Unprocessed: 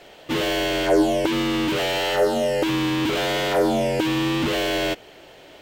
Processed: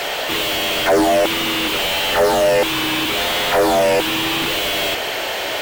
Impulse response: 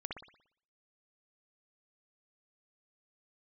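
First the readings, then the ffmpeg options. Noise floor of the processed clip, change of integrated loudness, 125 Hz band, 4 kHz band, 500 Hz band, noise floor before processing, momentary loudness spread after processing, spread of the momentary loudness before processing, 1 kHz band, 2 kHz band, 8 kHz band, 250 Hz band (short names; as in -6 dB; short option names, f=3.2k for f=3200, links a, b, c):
-23 dBFS, +5.0 dB, -2.5 dB, +8.5 dB, +4.5 dB, -47 dBFS, 5 LU, 4 LU, +7.0 dB, +7.0 dB, +9.5 dB, -1.5 dB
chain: -filter_complex "[0:a]aemphasis=mode=production:type=riaa,asplit=2[a][b];[b]highpass=f=720:p=1,volume=37dB,asoftclip=type=tanh:threshold=-6.5dB[c];[a][c]amix=inputs=2:normalize=0,lowpass=f=1.4k:p=1,volume=-6dB,volume=1dB"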